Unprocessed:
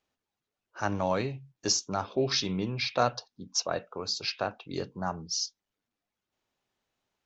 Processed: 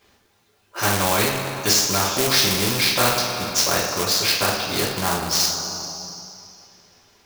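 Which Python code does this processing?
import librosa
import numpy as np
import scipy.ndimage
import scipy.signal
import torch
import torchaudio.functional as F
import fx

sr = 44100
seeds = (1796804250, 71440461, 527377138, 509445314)

y = fx.rev_double_slope(x, sr, seeds[0], early_s=0.36, late_s=2.3, knee_db=-18, drr_db=-7.5)
y = fx.quant_float(y, sr, bits=2)
y = fx.spectral_comp(y, sr, ratio=2.0)
y = y * librosa.db_to_amplitude(7.5)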